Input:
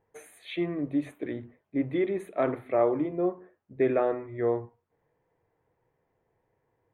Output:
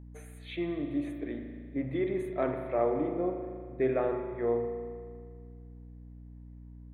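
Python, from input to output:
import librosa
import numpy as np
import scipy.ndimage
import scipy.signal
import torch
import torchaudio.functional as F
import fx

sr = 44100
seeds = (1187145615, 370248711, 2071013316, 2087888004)

y = fx.rev_spring(x, sr, rt60_s=2.0, pass_ms=(38,), chirp_ms=30, drr_db=5.0)
y = fx.add_hum(y, sr, base_hz=60, snr_db=14)
y = y * 10.0 ** (-4.5 / 20.0)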